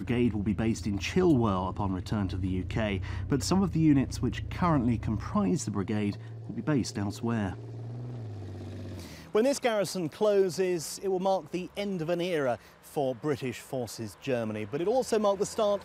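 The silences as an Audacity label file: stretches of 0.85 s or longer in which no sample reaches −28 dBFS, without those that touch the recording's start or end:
7.490000	9.350000	silence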